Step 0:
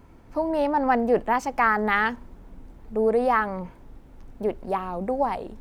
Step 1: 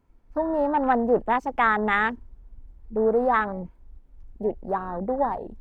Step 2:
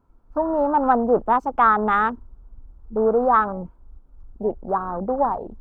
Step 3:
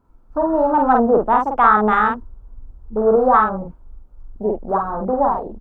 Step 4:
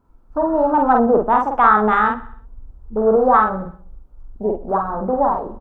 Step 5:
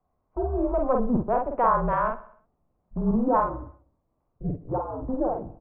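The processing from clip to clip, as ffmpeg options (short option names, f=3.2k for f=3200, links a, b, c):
-af "afwtdn=0.0316"
-af "highshelf=f=1.6k:t=q:w=3:g=-6,volume=2dB"
-filter_complex "[0:a]asplit=2[a][b];[b]adelay=47,volume=-3dB[c];[a][c]amix=inputs=2:normalize=0,volume=2dB"
-af "aecho=1:1:64|128|192|256|320:0.141|0.0763|0.0412|0.0222|0.012"
-af "highpass=f=180:t=q:w=0.5412,highpass=f=180:t=q:w=1.307,lowpass=f=2.7k:t=q:w=0.5176,lowpass=f=2.7k:t=q:w=0.7071,lowpass=f=2.7k:t=q:w=1.932,afreqshift=-250,volume=-8.5dB"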